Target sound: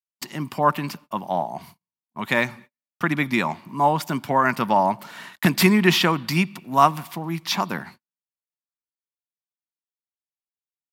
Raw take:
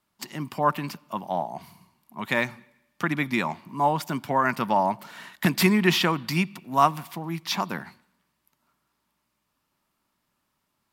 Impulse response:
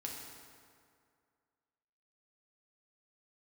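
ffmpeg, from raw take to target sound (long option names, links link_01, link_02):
-af "agate=range=-42dB:threshold=-47dB:ratio=16:detection=peak,volume=3.5dB"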